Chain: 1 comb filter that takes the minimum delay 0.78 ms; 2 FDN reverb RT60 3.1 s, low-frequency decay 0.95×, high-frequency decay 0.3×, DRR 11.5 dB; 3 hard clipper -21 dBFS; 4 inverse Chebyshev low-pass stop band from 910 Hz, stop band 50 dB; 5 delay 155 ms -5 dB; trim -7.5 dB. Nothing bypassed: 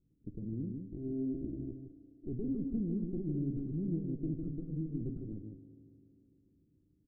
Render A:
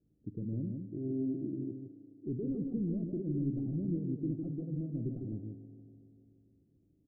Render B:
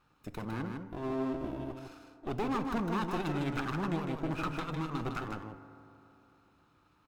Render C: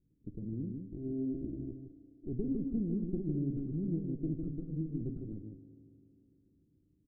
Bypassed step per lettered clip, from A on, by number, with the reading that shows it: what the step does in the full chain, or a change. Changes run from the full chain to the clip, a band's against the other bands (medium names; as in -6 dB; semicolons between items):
1, momentary loudness spread change -2 LU; 4, crest factor change -2.0 dB; 3, distortion -15 dB